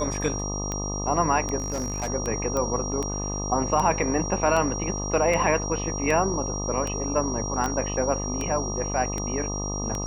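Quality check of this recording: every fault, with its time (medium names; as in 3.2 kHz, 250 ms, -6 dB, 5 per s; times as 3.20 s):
buzz 50 Hz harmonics 25 -31 dBFS
tick 78 rpm -15 dBFS
whine 5.7 kHz -32 dBFS
1.58–2.08 s: clipped -24 dBFS
2.57 s: pop -15 dBFS
7.66 s: pop -15 dBFS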